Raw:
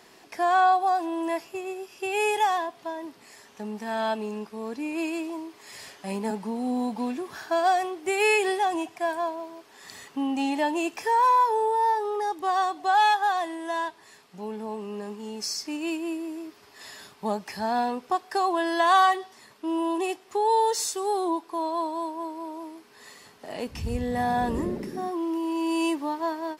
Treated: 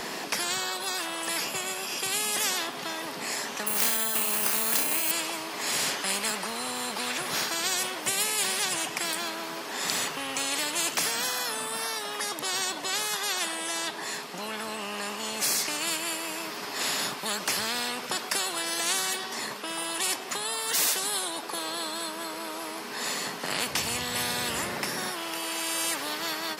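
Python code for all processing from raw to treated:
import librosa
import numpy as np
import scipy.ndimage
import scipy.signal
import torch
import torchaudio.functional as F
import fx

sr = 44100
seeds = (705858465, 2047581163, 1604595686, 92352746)

y = fx.chain(x, sr, fx.over_compress(threshold_db=-35.0, ratio=-1.0),
    fx.room_flutter(wall_m=5.4, rt60_s=0.41),
    fx.resample_bad(factor=4, down='filtered', up='zero_stuff'), at=(3.67, 5.11))
y = scipy.signal.sosfilt(scipy.signal.butter(4, 150.0, 'highpass', fs=sr, output='sos'), y)
y = fx.spectral_comp(y, sr, ratio=10.0)
y = F.gain(torch.from_numpy(y), 3.0).numpy()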